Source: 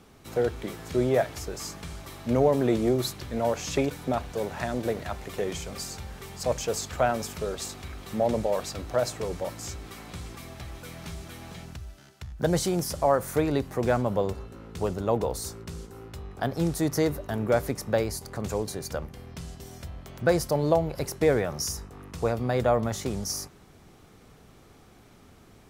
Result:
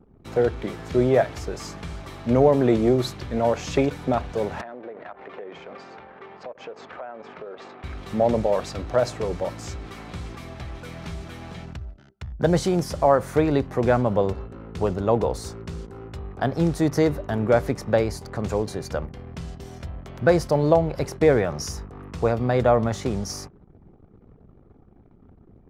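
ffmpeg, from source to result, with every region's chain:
-filter_complex "[0:a]asettb=1/sr,asplit=3[a][b][c];[a]atrim=end=4.614[d];[b]atrim=start=4.61:end=7.84,asetpts=PTS-STARTPTS,afade=t=in:d=0.004:c=qsin,afade=t=out:st=3.226:d=0.004:c=qsin,highpass=360,lowpass=2.1k,acompressor=threshold=-39dB:ratio=5:attack=3.2:release=140:knee=1:detection=peak[e];[c]atrim=start=7.836[f];[d][e]acrossfade=d=0.004:c1=hsin:c2=qsin[g];[g][f]acrossfade=d=0.004:c1=qsin:c2=hsin,anlmdn=0.00398,aemphasis=mode=reproduction:type=50fm,volume=4.5dB"

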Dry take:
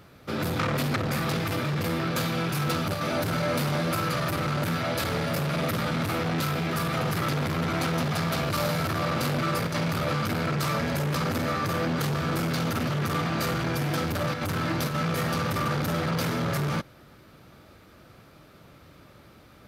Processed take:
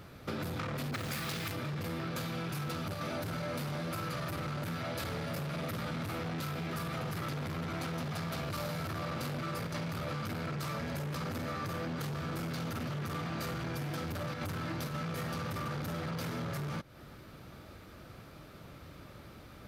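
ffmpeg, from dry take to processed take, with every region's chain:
-filter_complex "[0:a]asettb=1/sr,asplit=3[a][b][c];[a]atrim=end=0.914[d];[b]atrim=start=0.91:end=1.52,asetpts=PTS-STARTPTS,afade=t=in:d=0.004:c=qsin,afade=t=out:st=0.606:d=0.004:c=qsin,acrusher=bits=4:mode=log:mix=0:aa=0.000001,adynamicequalizer=threshold=0.00708:dfrequency=1500:dqfactor=0.7:tfrequency=1500:tqfactor=0.7:attack=5:release=100:ratio=0.375:range=4:mode=boostabove:tftype=highshelf[e];[c]atrim=start=1.516[f];[d][e]acrossfade=d=0.004:c1=hsin:c2=qsin[g];[g][f]acrossfade=d=0.004:c1=qsin:c2=hsin,lowshelf=f=99:g=5,acompressor=threshold=-35dB:ratio=6"

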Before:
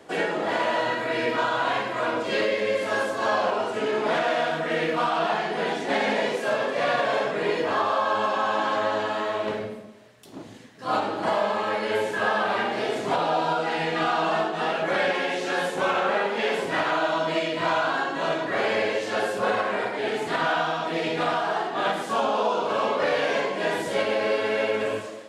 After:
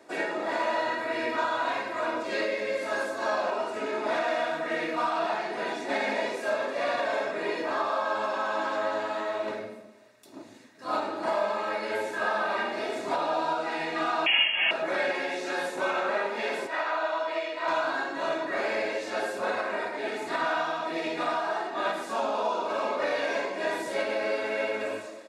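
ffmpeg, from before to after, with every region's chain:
-filter_complex "[0:a]asettb=1/sr,asplit=3[a][b][c];[a]atrim=end=14.264[d];[b]atrim=start=14.26:end=14.71,asetpts=PTS-STARTPTS,afade=t=in:d=0.004:c=qsin,afade=t=out:st=0.446:d=0.004:c=qsin,highpass=160,acontrast=73,lowpass=f=3k:t=q:w=0.5098,lowpass=f=3k:t=q:w=0.6013,lowpass=f=3k:t=q:w=0.9,lowpass=f=3k:t=q:w=2.563,afreqshift=-3500[e];[c]atrim=start=14.706[f];[d][e]acrossfade=d=0.004:c1=hsin:c2=qsin[g];[g][f]acrossfade=d=0.004:c1=qsin:c2=hsin,asettb=1/sr,asplit=3[h][i][j];[h]atrim=end=16.674[k];[i]atrim=start=16.67:end=17.68,asetpts=PTS-STARTPTS,afade=t=in:d=0.004:c=qsin,afade=t=out:st=1.006:d=0.004:c=qsin,highpass=520,highshelf=f=5.8k:g=-11[l];[j]atrim=start=17.676[m];[k][l]acrossfade=d=0.004:c1=hsin:c2=qsin[n];[n][m]acrossfade=d=0.004:c1=qsin:c2=hsin,highpass=f=240:p=1,bandreject=f=3.1k:w=7,aecho=1:1:3.2:0.41,volume=-4.5dB"

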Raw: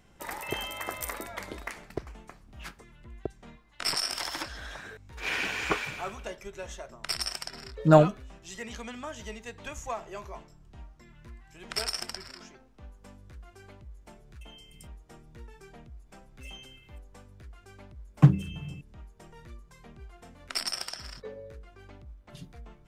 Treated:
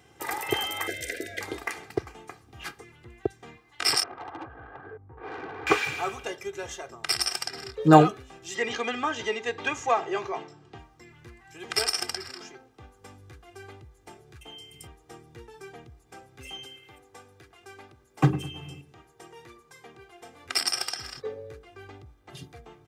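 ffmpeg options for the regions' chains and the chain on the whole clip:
-filter_complex "[0:a]asettb=1/sr,asplit=3[a][b][c];[a]atrim=end=0.874[d];[b]atrim=start=0.87:end=1.41,asetpts=PTS-STARTPTS,afade=t=in:d=0.004:c=qsin,afade=t=out:st=0.536:d=0.004:c=qsin,acrossover=split=7700[e][f];[f]acompressor=threshold=-52dB:ratio=4:attack=1:release=60[g];[e][g]amix=inputs=2:normalize=0,asuperstop=centerf=1000:order=12:qfactor=1.2[h];[c]atrim=start=1.406[i];[d][h]acrossfade=d=0.004:c1=hsin:c2=qsin[j];[j][i]acrossfade=d=0.004:c1=qsin:c2=hsin,asettb=1/sr,asplit=3[k][l][m];[k]atrim=end=4.034[n];[l]atrim=start=4.03:end=5.67,asetpts=PTS-STARTPTS,afade=t=in:d=0.004:c=qsin,afade=t=out:st=1.636:d=0.004:c=qsin,lowpass=f=1.2k:w=0.5412,lowpass=f=1.2k:w=1.3066,aeval=exprs='(tanh(89.1*val(0)+0.3)-tanh(0.3))/89.1':c=same[o];[m]atrim=start=5.666[p];[n][o]acrossfade=d=0.004:c1=hsin:c2=qsin[q];[q][p]acrossfade=d=0.004:c1=qsin:c2=hsin,asettb=1/sr,asplit=3[r][s][t];[r]atrim=end=8.554[u];[s]atrim=start=8.55:end=10.78,asetpts=PTS-STARTPTS,afade=t=in:d=0.004:c=qsin,afade=t=out:st=2.226:d=0.004:c=qsin,highpass=160,lowpass=4.6k,acontrast=62[v];[t]atrim=start=10.776[w];[u][v]acrossfade=d=0.004:c1=hsin:c2=qsin[x];[x][w]acrossfade=d=0.004:c1=qsin:c2=hsin,asettb=1/sr,asplit=3[y][z][aa];[y]atrim=end=16.654[ab];[z]atrim=start=16.65:end=20.46,asetpts=PTS-STARTPTS,afade=t=in:d=0.004:c=qsin,afade=t=out:st=3.806:d=0.004:c=qsin,highpass=f=260:p=1,asplit=2[ac][ad];[ad]adelay=105,lowpass=f=1.4k:p=1,volume=-13.5dB,asplit=2[ae][af];[af]adelay=105,lowpass=f=1.4k:p=1,volume=0.46,asplit=2[ag][ah];[ah]adelay=105,lowpass=f=1.4k:p=1,volume=0.46,asplit=2[ai][aj];[aj]adelay=105,lowpass=f=1.4k:p=1,volume=0.46[ak];[ac][ae][ag][ai][ak]amix=inputs=5:normalize=0,atrim=end_sample=168021[al];[aa]atrim=start=20.456[am];[ab][al]acrossfade=d=0.004:c1=hsin:c2=qsin[an];[an][am]acrossfade=d=0.004:c1=qsin:c2=hsin,highpass=f=90:w=0.5412,highpass=f=90:w=1.3066,aecho=1:1:2.5:0.67,volume=4dB"

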